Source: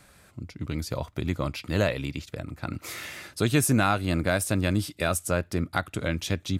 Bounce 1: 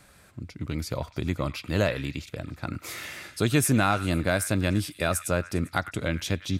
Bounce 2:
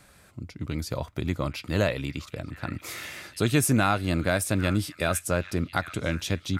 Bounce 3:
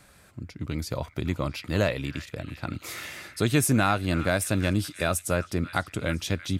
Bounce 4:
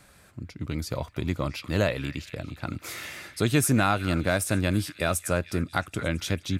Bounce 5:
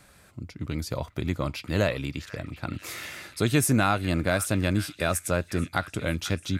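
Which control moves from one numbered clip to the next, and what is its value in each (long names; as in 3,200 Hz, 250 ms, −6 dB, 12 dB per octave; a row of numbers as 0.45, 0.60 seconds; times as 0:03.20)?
echo through a band-pass that steps, delay time: 100, 804, 334, 223, 491 milliseconds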